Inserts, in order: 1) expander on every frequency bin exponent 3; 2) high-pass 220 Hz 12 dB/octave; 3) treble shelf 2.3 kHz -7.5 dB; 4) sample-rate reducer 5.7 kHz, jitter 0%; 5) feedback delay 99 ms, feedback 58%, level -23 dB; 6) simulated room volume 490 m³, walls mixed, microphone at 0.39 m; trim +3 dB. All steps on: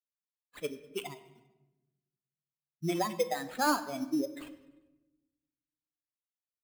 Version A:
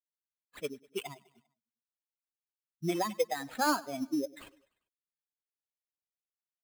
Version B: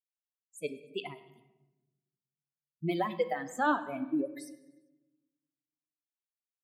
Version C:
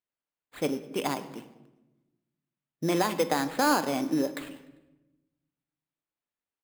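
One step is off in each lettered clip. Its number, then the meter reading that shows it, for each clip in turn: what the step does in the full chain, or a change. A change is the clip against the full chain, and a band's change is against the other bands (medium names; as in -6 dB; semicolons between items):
6, echo-to-direct -10.5 dB to -21.5 dB; 4, distortion -5 dB; 1, loudness change +5.0 LU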